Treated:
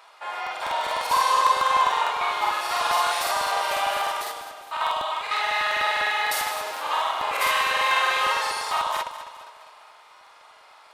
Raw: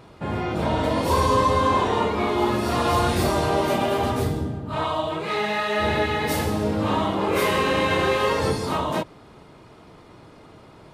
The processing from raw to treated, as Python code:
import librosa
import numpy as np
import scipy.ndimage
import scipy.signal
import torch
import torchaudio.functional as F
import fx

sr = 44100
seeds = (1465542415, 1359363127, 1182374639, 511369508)

y = scipy.signal.sosfilt(scipy.signal.butter(4, 780.0, 'highpass', fs=sr, output='sos'), x)
y = fx.echo_feedback(y, sr, ms=212, feedback_pct=52, wet_db=-12.0)
y = fx.buffer_crackle(y, sr, first_s=0.42, period_s=0.1, block=2048, kind='repeat')
y = y * 10.0 ** (2.5 / 20.0)